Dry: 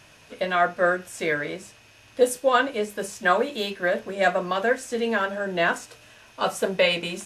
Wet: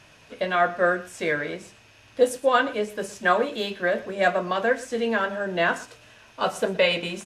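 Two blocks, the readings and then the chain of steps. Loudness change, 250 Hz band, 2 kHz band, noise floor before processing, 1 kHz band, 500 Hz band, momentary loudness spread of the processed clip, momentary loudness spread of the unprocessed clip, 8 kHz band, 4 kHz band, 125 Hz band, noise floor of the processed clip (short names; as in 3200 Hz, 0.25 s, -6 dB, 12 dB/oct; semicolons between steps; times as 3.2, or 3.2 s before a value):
0.0 dB, 0.0 dB, 0.0 dB, -53 dBFS, 0.0 dB, 0.0 dB, 9 LU, 9 LU, -4.0 dB, -1.0 dB, 0.0 dB, -53 dBFS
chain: high shelf 8700 Hz -8.5 dB; on a send: echo 0.118 s -18.5 dB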